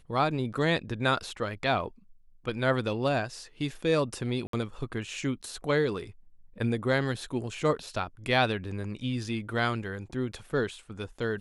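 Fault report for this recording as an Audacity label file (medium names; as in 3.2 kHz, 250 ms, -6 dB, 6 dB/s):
4.470000	4.530000	dropout 63 ms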